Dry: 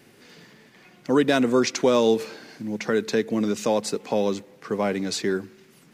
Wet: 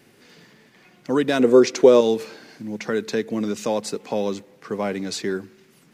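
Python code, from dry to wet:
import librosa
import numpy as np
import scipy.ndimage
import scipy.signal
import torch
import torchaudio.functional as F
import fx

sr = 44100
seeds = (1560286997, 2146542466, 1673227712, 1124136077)

y = fx.peak_eq(x, sr, hz=430.0, db=11.5, octaves=0.92, at=(1.39, 2.01))
y = y * librosa.db_to_amplitude(-1.0)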